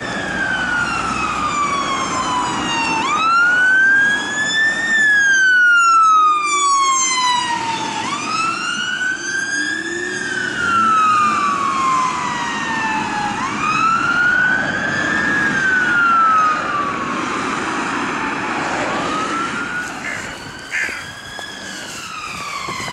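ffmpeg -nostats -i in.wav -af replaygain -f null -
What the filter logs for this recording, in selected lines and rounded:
track_gain = -2.4 dB
track_peak = 0.389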